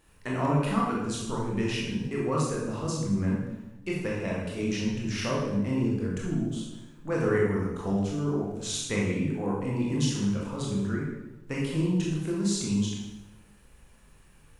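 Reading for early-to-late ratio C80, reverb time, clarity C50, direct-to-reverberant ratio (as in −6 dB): 4.0 dB, 1.0 s, 0.5 dB, −4.5 dB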